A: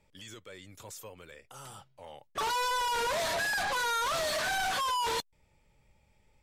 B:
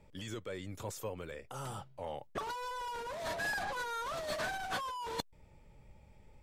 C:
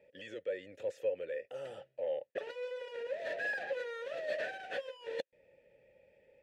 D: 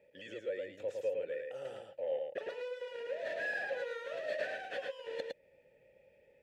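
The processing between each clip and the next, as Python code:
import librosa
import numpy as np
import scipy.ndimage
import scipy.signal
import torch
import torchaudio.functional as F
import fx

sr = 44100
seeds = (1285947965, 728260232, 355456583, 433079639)

y1 = fx.tilt_shelf(x, sr, db=5.0, hz=1300.0)
y1 = fx.over_compress(y1, sr, threshold_db=-34.0, ratio=-0.5)
y1 = y1 * librosa.db_to_amplitude(-2.0)
y2 = fx.vowel_filter(y1, sr, vowel='e')
y2 = y2 * librosa.db_to_amplitude(11.0)
y3 = y2 + 10.0 ** (-3.5 / 20.0) * np.pad(y2, (int(109 * sr / 1000.0), 0))[:len(y2)]
y3 = y3 * librosa.db_to_amplitude(-1.5)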